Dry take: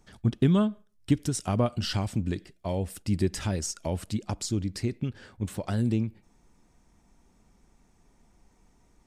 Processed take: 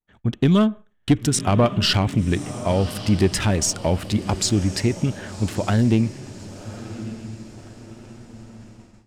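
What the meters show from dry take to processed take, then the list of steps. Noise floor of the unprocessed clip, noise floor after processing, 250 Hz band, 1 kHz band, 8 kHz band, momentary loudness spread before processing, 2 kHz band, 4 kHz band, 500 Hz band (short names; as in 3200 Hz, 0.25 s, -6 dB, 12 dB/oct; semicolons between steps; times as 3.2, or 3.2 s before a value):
-64 dBFS, -55 dBFS, +7.5 dB, +10.5 dB, +11.0 dB, 10 LU, +12.0 dB, +12.5 dB, +9.0 dB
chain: Wiener smoothing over 9 samples; bell 2800 Hz +4 dB 1.7 oct; diffused feedback echo 1.139 s, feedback 44%, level -14.5 dB; vibrato 0.4 Hz 26 cents; AGC gain up to 7.5 dB; low shelf 430 Hz -2.5 dB; soft clip -11 dBFS, distortion -20 dB; expander -46 dBFS; gain +4 dB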